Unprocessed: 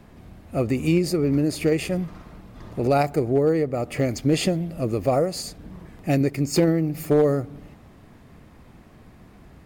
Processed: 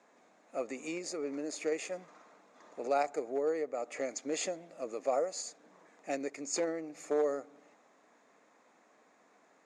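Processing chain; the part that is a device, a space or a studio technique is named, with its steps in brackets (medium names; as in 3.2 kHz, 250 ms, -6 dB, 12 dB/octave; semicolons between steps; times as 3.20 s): phone speaker on a table (cabinet simulation 340–7500 Hz, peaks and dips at 360 Hz -9 dB, 3 kHz -8 dB, 4.7 kHz -5 dB, 6.8 kHz +9 dB); trim -8.5 dB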